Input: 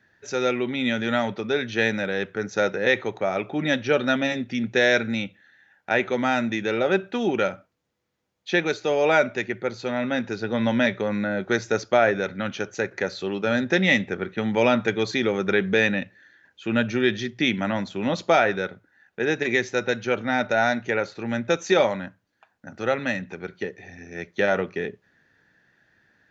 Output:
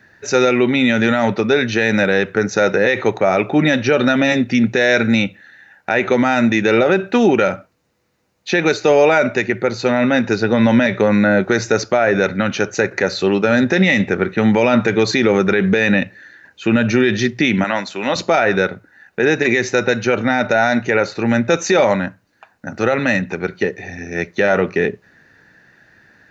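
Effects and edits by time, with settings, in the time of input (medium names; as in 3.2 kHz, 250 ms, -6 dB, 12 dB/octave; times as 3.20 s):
17.64–18.16 s: high-pass 900 Hz 6 dB/octave
whole clip: band-stop 3.3 kHz, Q 8.1; loudness maximiser +16 dB; trim -3.5 dB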